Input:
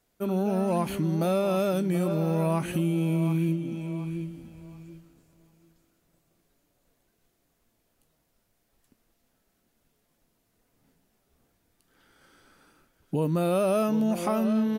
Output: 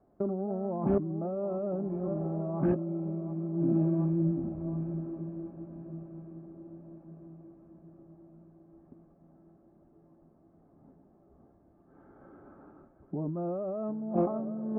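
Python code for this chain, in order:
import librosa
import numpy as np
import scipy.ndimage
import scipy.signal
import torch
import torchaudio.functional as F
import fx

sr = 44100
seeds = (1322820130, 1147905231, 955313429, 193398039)

p1 = scipy.signal.sosfilt(scipy.signal.butter(4, 1100.0, 'lowpass', fs=sr, output='sos'), x)
p2 = fx.notch_comb(p1, sr, f0_hz=480.0)
p3 = fx.over_compress(p2, sr, threshold_db=-35.0, ratio=-1.0)
p4 = fx.peak_eq(p3, sr, hz=420.0, db=5.5, octaves=1.9)
y = p4 + fx.echo_diffused(p4, sr, ms=1252, feedback_pct=49, wet_db=-13.0, dry=0)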